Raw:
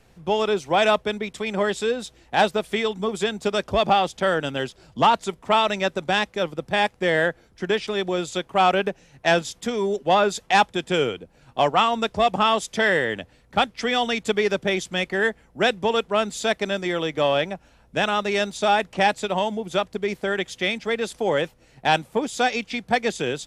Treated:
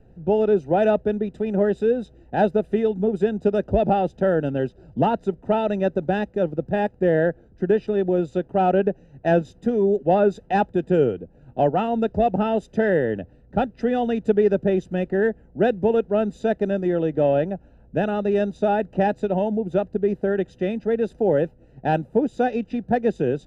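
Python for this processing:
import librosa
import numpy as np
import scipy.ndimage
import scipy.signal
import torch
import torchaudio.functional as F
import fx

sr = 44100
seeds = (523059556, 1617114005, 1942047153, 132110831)

y = scipy.signal.lfilter(np.full(40, 1.0 / 40), 1.0, x)
y = y * librosa.db_to_amplitude(6.5)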